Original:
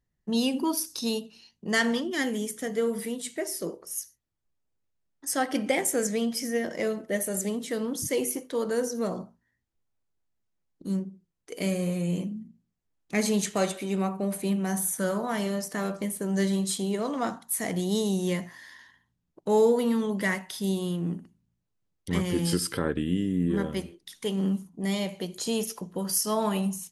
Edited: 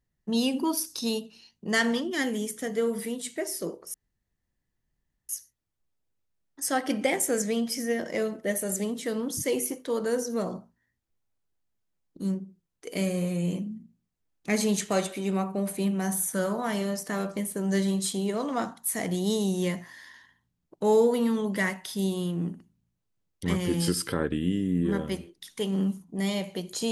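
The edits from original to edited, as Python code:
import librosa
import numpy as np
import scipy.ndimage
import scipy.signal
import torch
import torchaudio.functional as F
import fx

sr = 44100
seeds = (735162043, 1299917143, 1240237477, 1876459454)

y = fx.edit(x, sr, fx.insert_room_tone(at_s=3.94, length_s=1.35), tone=tone)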